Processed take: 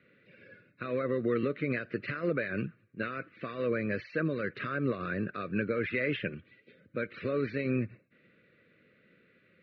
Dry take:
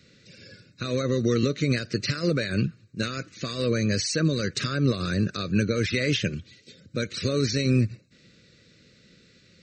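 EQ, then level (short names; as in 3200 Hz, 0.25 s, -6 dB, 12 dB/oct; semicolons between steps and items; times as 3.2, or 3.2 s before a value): HPF 520 Hz 6 dB/oct; LPF 2500 Hz 24 dB/oct; air absorption 210 m; 0.0 dB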